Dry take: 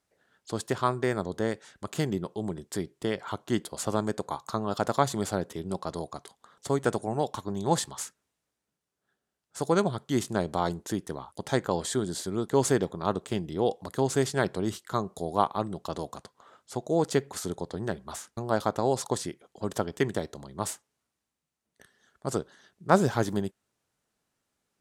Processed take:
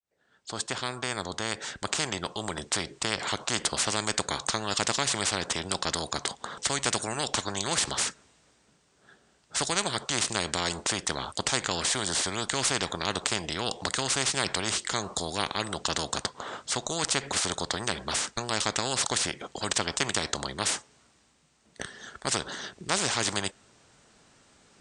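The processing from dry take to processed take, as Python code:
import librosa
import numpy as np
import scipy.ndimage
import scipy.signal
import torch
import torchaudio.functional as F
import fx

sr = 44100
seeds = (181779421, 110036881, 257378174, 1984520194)

y = fx.fade_in_head(x, sr, length_s=3.06)
y = scipy.signal.sosfilt(scipy.signal.ellip(4, 1.0, 40, 8600.0, 'lowpass', fs=sr, output='sos'), y)
y = fx.spectral_comp(y, sr, ratio=4.0)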